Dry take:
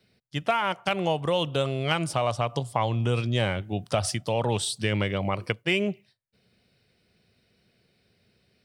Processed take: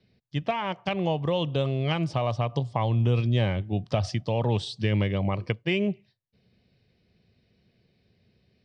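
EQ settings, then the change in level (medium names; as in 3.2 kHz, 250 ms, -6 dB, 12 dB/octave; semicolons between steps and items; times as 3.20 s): low-pass 5.6 kHz 24 dB/octave; bass shelf 340 Hz +8.5 dB; band-stop 1.4 kHz, Q 6.8; -4.0 dB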